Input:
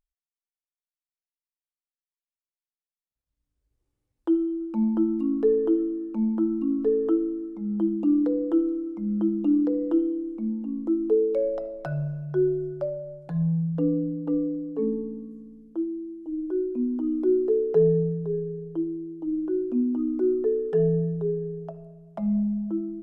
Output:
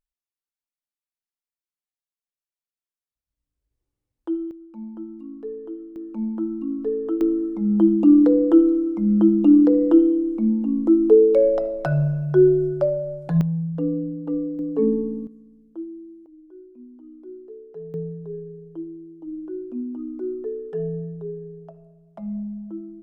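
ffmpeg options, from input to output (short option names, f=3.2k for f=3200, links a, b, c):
-af "asetnsamples=n=441:p=0,asendcmd='4.51 volume volume -12dB;5.96 volume volume -2dB;7.21 volume volume 8.5dB;13.41 volume volume 0dB;14.59 volume volume 6.5dB;15.27 volume volume -5dB;16.26 volume volume -18dB;17.94 volume volume -5.5dB',volume=-3.5dB"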